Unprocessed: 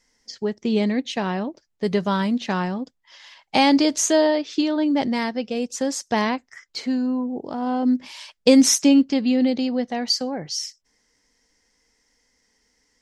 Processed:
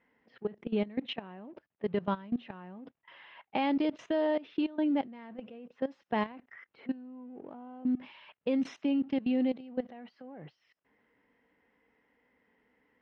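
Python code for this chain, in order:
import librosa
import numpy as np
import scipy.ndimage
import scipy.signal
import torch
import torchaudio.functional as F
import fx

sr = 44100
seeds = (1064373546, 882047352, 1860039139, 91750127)

p1 = fx.law_mismatch(x, sr, coded='mu')
p2 = fx.over_compress(p1, sr, threshold_db=-29.0, ratio=-1.0)
p3 = p1 + (p2 * librosa.db_to_amplitude(-1.5))
p4 = scipy.signal.sosfilt(scipy.signal.bessel(2, 150.0, 'highpass', norm='mag', fs=sr, output='sos'), p3)
p5 = fx.peak_eq(p4, sr, hz=2800.0, db=5.0, octaves=0.31)
p6 = fx.notch(p5, sr, hz=4600.0, q=11.0)
p7 = fx.level_steps(p6, sr, step_db=19)
p8 = fx.air_absorb(p7, sr, metres=420.0)
p9 = fx.env_lowpass(p8, sr, base_hz=2400.0, full_db=-14.0)
y = p9 * librosa.db_to_amplitude(-7.5)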